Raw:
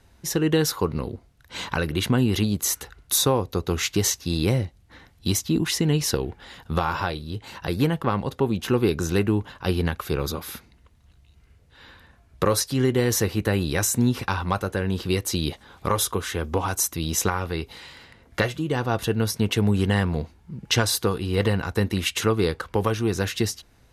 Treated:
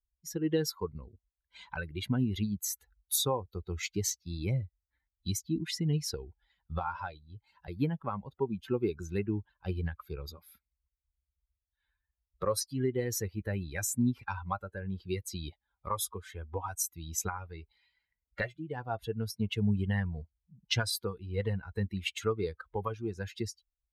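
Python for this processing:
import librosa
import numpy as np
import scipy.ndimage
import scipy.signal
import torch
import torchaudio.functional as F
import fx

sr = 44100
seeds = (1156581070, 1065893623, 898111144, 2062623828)

y = fx.bin_expand(x, sr, power=2.0)
y = y * librosa.db_to_amplitude(-5.0)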